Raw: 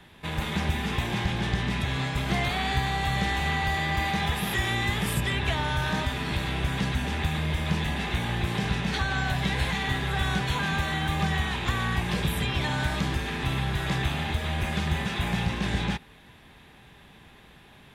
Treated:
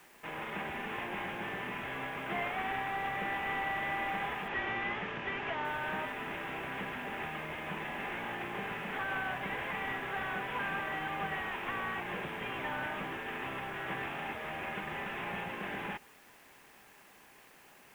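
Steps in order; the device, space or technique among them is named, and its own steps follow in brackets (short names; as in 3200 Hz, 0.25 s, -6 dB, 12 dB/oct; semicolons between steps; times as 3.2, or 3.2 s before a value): army field radio (BPF 350–3300 Hz; CVSD 16 kbps; white noise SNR 26 dB); 4.48–5.65 inverse Chebyshev low-pass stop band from 11000 Hz, stop band 40 dB; gain -4.5 dB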